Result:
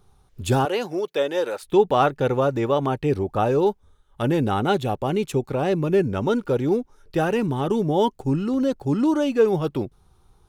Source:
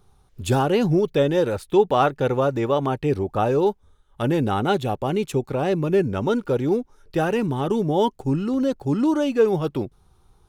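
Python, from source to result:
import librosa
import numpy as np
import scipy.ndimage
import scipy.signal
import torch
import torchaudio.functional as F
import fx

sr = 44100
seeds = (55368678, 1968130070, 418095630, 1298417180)

y = fx.highpass(x, sr, hz=490.0, slope=12, at=(0.65, 1.63))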